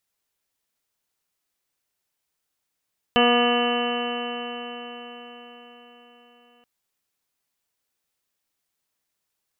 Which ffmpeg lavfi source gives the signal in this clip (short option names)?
-f lavfi -i "aevalsrc='0.0891*pow(10,-3*t/4.99)*sin(2*PI*240.07*t)+0.106*pow(10,-3*t/4.99)*sin(2*PI*480.56*t)+0.0891*pow(10,-3*t/4.99)*sin(2*PI*721.88*t)+0.0376*pow(10,-3*t/4.99)*sin(2*PI*964.44*t)+0.0631*pow(10,-3*t/4.99)*sin(2*PI*1208.67*t)+0.0112*pow(10,-3*t/4.99)*sin(2*PI*1454.96*t)+0.0422*pow(10,-3*t/4.99)*sin(2*PI*1703.71*t)+0.0126*pow(10,-3*t/4.99)*sin(2*PI*1955.31*t)+0.02*pow(10,-3*t/4.99)*sin(2*PI*2210.16*t)+0.00891*pow(10,-3*t/4.99)*sin(2*PI*2468.62*t)+0.0596*pow(10,-3*t/4.99)*sin(2*PI*2731.07*t)+0.0794*pow(10,-3*t/4.99)*sin(2*PI*2997.86*t)':d=3.48:s=44100"